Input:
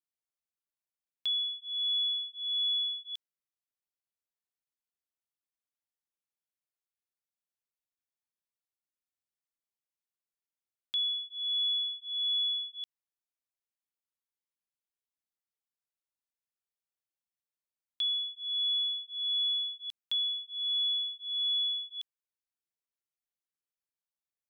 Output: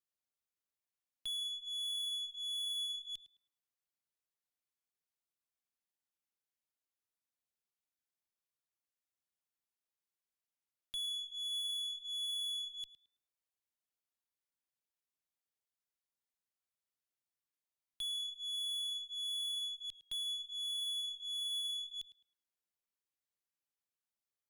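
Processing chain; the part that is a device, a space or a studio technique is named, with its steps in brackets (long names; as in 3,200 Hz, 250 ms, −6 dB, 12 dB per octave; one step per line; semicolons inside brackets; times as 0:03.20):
rockabilly slapback (tube saturation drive 36 dB, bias 0.25; tape delay 108 ms, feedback 32%, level −12 dB, low-pass 2,800 Hz)
level −1.5 dB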